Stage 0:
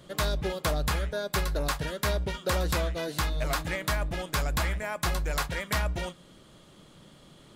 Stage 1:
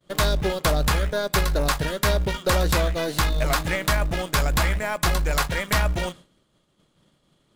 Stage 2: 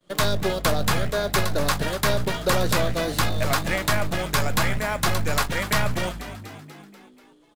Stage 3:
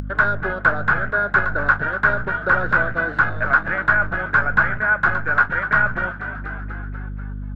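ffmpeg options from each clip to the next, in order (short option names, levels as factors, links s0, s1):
-filter_complex "[0:a]agate=range=0.0224:threshold=0.00794:ratio=3:detection=peak,asplit=2[s0][s1];[s1]acrusher=bits=4:dc=4:mix=0:aa=0.000001,volume=0.422[s2];[s0][s2]amix=inputs=2:normalize=0,volume=1.78"
-filter_complex "[0:a]acrossover=split=120|1300|1900[s0][s1][s2][s3];[s0]aeval=exprs='abs(val(0))':c=same[s4];[s4][s1][s2][s3]amix=inputs=4:normalize=0,asplit=7[s5][s6][s7][s8][s9][s10][s11];[s6]adelay=243,afreqshift=50,volume=0.224[s12];[s7]adelay=486,afreqshift=100,volume=0.132[s13];[s8]adelay=729,afreqshift=150,volume=0.0776[s14];[s9]adelay=972,afreqshift=200,volume=0.0462[s15];[s10]adelay=1215,afreqshift=250,volume=0.0272[s16];[s11]adelay=1458,afreqshift=300,volume=0.016[s17];[s5][s12][s13][s14][s15][s16][s17]amix=inputs=7:normalize=0"
-af "lowpass=f=1500:t=q:w=13,aeval=exprs='val(0)+0.0316*(sin(2*PI*50*n/s)+sin(2*PI*2*50*n/s)/2+sin(2*PI*3*50*n/s)/3+sin(2*PI*4*50*n/s)/4+sin(2*PI*5*50*n/s)/5)':c=same,acompressor=mode=upward:threshold=0.126:ratio=2.5,volume=0.668"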